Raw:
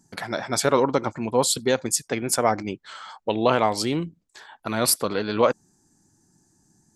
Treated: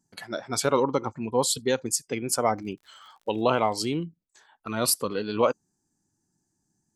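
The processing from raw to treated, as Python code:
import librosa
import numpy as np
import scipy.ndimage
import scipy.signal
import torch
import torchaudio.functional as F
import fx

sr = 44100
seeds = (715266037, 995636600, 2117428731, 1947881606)

y = fx.noise_reduce_blind(x, sr, reduce_db=10)
y = fx.dmg_crackle(y, sr, seeds[0], per_s=84.0, level_db=-44.0, at=(2.57, 3.91), fade=0.02)
y = F.gain(torch.from_numpy(y), -3.0).numpy()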